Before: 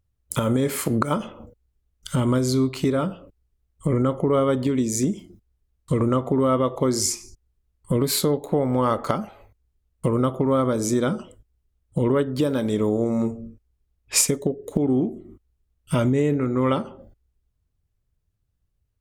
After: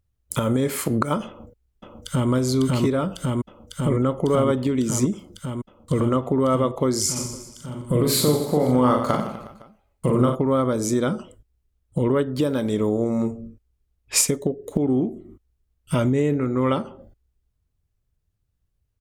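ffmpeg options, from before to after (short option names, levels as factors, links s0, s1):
-filter_complex "[0:a]asplit=2[s0][s1];[s1]afade=t=in:st=1.27:d=0.01,afade=t=out:st=2.31:d=0.01,aecho=0:1:550|1100|1650|2200|2750|3300|3850|4400|4950|5500|6050|6600:0.891251|0.757563|0.643929|0.547339|0.465239|0.395453|0.336135|0.285715|0.242857|0.206429|0.175464|0.149145[s2];[s0][s2]amix=inputs=2:normalize=0,asplit=3[s3][s4][s5];[s3]afade=t=out:st=7.15:d=0.02[s6];[s4]aecho=1:1:40|92|159.6|247.5|361.7|510.2:0.631|0.398|0.251|0.158|0.1|0.0631,afade=t=in:st=7.15:d=0.02,afade=t=out:st=10.34:d=0.02[s7];[s5]afade=t=in:st=10.34:d=0.02[s8];[s6][s7][s8]amix=inputs=3:normalize=0"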